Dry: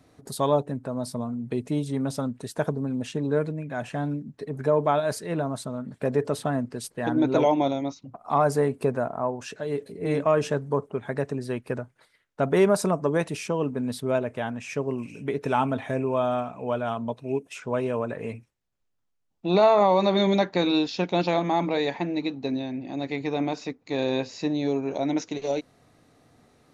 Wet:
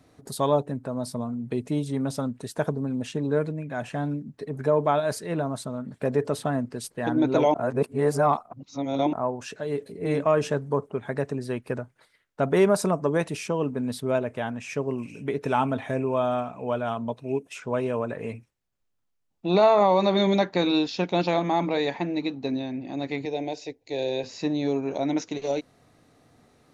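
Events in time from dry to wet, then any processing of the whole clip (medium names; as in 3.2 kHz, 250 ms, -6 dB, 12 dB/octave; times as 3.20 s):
7.54–9.13 s: reverse
23.25–24.24 s: static phaser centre 510 Hz, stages 4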